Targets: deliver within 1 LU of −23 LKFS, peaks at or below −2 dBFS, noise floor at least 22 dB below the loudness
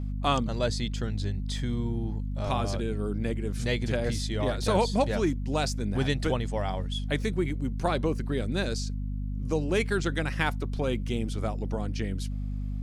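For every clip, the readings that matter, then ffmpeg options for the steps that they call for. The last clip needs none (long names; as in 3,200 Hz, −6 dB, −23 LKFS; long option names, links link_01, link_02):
mains hum 50 Hz; hum harmonics up to 250 Hz; level of the hum −29 dBFS; integrated loudness −29.5 LKFS; sample peak −11.0 dBFS; target loudness −23.0 LKFS
→ -af "bandreject=frequency=50:width_type=h:width=4,bandreject=frequency=100:width_type=h:width=4,bandreject=frequency=150:width_type=h:width=4,bandreject=frequency=200:width_type=h:width=4,bandreject=frequency=250:width_type=h:width=4"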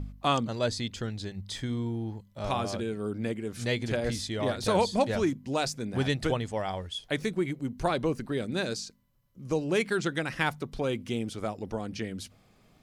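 mains hum none found; integrated loudness −31.0 LKFS; sample peak −11.5 dBFS; target loudness −23.0 LKFS
→ -af "volume=8dB"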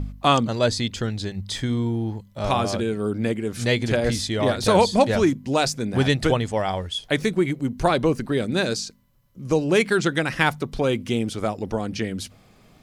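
integrated loudness −23.0 LKFS; sample peak −3.5 dBFS; background noise floor −54 dBFS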